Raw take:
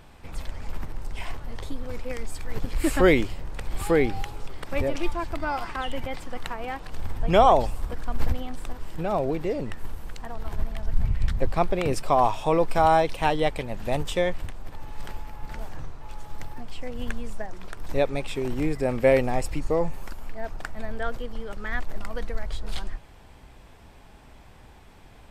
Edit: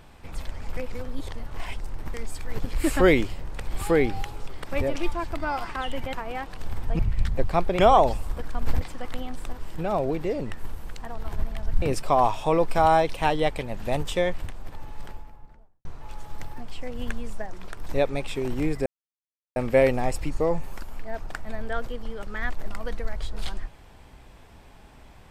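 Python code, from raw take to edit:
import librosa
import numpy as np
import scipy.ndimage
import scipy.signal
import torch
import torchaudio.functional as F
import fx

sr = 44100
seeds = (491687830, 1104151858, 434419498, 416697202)

y = fx.studio_fade_out(x, sr, start_s=14.67, length_s=1.18)
y = fx.edit(y, sr, fx.reverse_span(start_s=0.77, length_s=1.37),
    fx.move(start_s=6.13, length_s=0.33, to_s=8.34),
    fx.move(start_s=11.02, length_s=0.8, to_s=7.32),
    fx.insert_silence(at_s=18.86, length_s=0.7), tone=tone)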